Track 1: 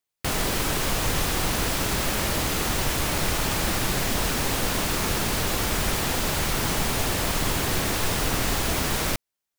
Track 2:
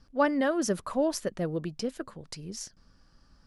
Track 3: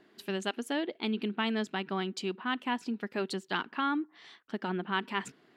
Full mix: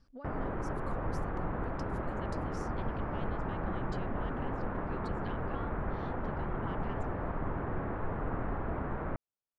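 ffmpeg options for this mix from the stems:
ffmpeg -i stem1.wav -i stem2.wav -i stem3.wav -filter_complex "[0:a]lowpass=frequency=1500:width=0.5412,lowpass=frequency=1500:width=1.3066,volume=-8dB[link_01];[1:a]highshelf=frequency=6800:gain=10,acompressor=threshold=-33dB:ratio=6,volume=-6dB,asplit=2[link_02][link_03];[2:a]adelay=1750,volume=-4.5dB[link_04];[link_03]apad=whole_len=322593[link_05];[link_04][link_05]sidechaincompress=threshold=-58dB:ratio=8:attack=16:release=352[link_06];[link_02][link_06]amix=inputs=2:normalize=0,aeval=exprs='0.0944*(cos(1*acos(clip(val(0)/0.0944,-1,1)))-cos(1*PI/2))+0.015*(cos(2*acos(clip(val(0)/0.0944,-1,1)))-cos(2*PI/2))':channel_layout=same,acompressor=threshold=-45dB:ratio=6,volume=0dB[link_07];[link_01][link_07]amix=inputs=2:normalize=0,lowpass=frequency=2600:poles=1" out.wav

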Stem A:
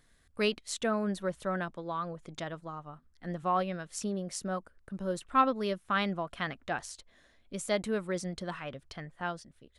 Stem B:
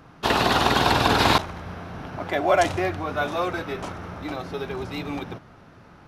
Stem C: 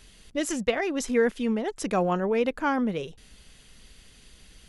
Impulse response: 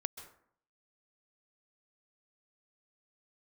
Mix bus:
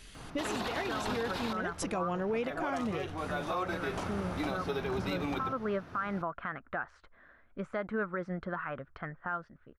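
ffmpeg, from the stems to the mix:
-filter_complex "[0:a]lowpass=frequency=1400:width_type=q:width=3.9,adelay=50,volume=0.5dB[link_01];[1:a]adelay=150,volume=1dB[link_02];[2:a]volume=0dB,asplit=2[link_03][link_04];[link_04]apad=whole_len=274314[link_05];[link_02][link_05]sidechaincompress=threshold=-36dB:ratio=5:attack=34:release=1130[link_06];[link_01][link_03]amix=inputs=2:normalize=0,equalizer=frequency=2300:width_type=o:width=0.77:gain=2.5,alimiter=limit=-21.5dB:level=0:latency=1:release=165,volume=0dB[link_07];[link_06][link_07]amix=inputs=2:normalize=0,alimiter=level_in=0.5dB:limit=-24dB:level=0:latency=1:release=207,volume=-0.5dB"

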